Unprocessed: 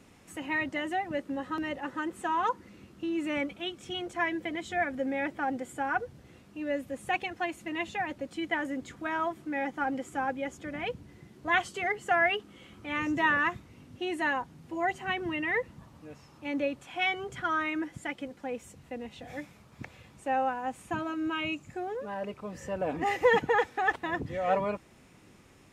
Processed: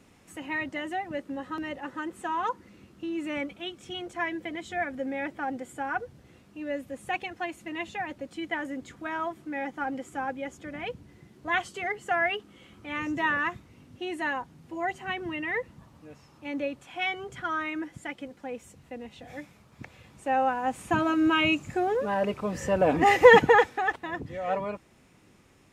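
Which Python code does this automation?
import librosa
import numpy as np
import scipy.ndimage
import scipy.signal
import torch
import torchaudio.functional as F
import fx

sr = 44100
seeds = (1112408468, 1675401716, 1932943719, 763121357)

y = fx.gain(x, sr, db=fx.line((19.83, -1.0), (21.11, 9.0), (23.46, 9.0), (23.96, -2.0)))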